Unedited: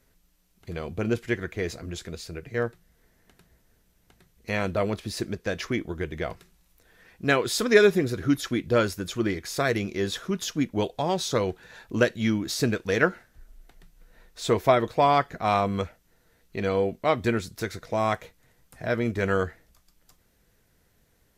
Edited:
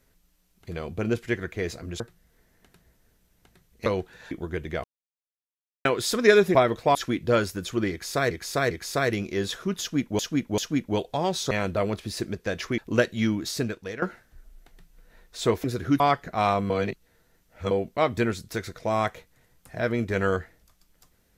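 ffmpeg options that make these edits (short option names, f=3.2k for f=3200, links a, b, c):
-filter_complex "[0:a]asplit=19[a][b][c][d][e][f][g][h][i][j][k][l][m][n][o][p][q][r][s];[a]atrim=end=2.002[t];[b]atrim=start=2.648:end=4.512[u];[c]atrim=start=11.358:end=11.812[v];[d]atrim=start=5.778:end=6.31,asetpts=PTS-STARTPTS,afade=t=out:st=0.528:d=0.004:c=hsin[w];[e]atrim=start=6.31:end=7.32,asetpts=PTS-STARTPTS,volume=0[x];[f]atrim=start=7.32:end=8.022,asetpts=PTS-STARTPTS,afade=t=in:d=0.004:c=hsin[y];[g]atrim=start=14.668:end=15.072[z];[h]atrim=start=8.378:end=9.742[aa];[i]atrim=start=9.338:end=9.742[ab];[j]atrim=start=9.338:end=10.822[ac];[k]atrim=start=10.428:end=10.822[ad];[l]atrim=start=10.428:end=11.362[ae];[m]atrim=start=4.508:end=5.782[af];[n]atrim=start=11.808:end=13.05,asetpts=PTS-STARTPTS,afade=t=out:st=0.592:d=0.65:silence=0.158489[ag];[o]atrim=start=13.05:end=14.672,asetpts=PTS-STARTPTS,afade=t=in:d=0.004:c=hsin:silence=0.158489[ah];[p]atrim=start=8.018:end=8.382[ai];[q]atrim=start=15.068:end=15.772[aj];[r]atrim=start=15.768:end=16.782,asetpts=PTS-STARTPTS,areverse[ak];[s]atrim=start=16.778[al];[t][u]acrossfade=d=0.004:c1=hsin:c2=hsin[am];[am][v]acrossfade=d=0.004:c1=hsin:c2=hsin[an];[w][x][y]concat=n=3:v=0:a=1[ao];[an][ao]acrossfade=d=0.004:c1=hsin:c2=hsin[ap];[ap][z]acrossfade=d=0.004:c1=hsin:c2=hsin[aq];[aq][aa]acrossfade=d=0.004:c1=hsin:c2=hsin[ar];[ar][ab]acrossfade=d=0.004:c1=hsin:c2=hsin[as];[as][ac]acrossfade=d=0.004:c1=hsin:c2=hsin[at];[at][ad]acrossfade=d=0.004:c1=hsin:c2=hsin[au];[au][ae]acrossfade=d=0.004:c1=hsin:c2=hsin[av];[av][af]acrossfade=d=0.004:c1=hsin:c2=hsin[aw];[ag][ah]concat=n=2:v=0:a=1[ax];[aw][ax]acrossfade=d=0.004:c1=hsin:c2=hsin[ay];[ay][ai]acrossfade=d=0.004:c1=hsin:c2=hsin[az];[az][aj]acrossfade=d=0.004:c1=hsin:c2=hsin[ba];[ba][ak]acrossfade=d=0.004:c1=hsin:c2=hsin[bb];[bb][al]acrossfade=d=0.004:c1=hsin:c2=hsin"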